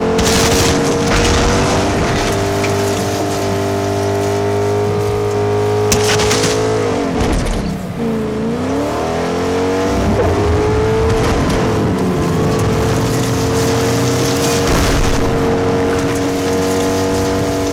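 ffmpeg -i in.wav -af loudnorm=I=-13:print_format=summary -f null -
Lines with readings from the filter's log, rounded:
Input Integrated:    -14.8 LUFS
Input True Peak:      -0.9 dBTP
Input LRA:             1.5 LU
Input Threshold:     -24.8 LUFS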